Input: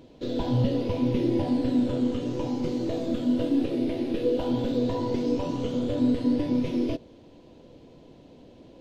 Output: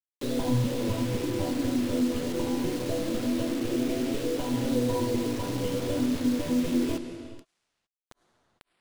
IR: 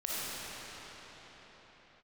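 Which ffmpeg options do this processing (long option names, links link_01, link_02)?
-filter_complex "[0:a]acompressor=threshold=-25dB:ratio=5,flanger=delay=6.7:depth=5.5:regen=-7:speed=0.23:shape=triangular,acrusher=bits=6:mix=0:aa=0.000001,asplit=2[link_01][link_02];[1:a]atrim=start_sample=2205,afade=type=out:start_time=0.3:duration=0.01,atrim=end_sample=13671,asetrate=23814,aresample=44100[link_03];[link_02][link_03]afir=irnorm=-1:irlink=0,volume=-15dB[link_04];[link_01][link_04]amix=inputs=2:normalize=0,volume=2dB"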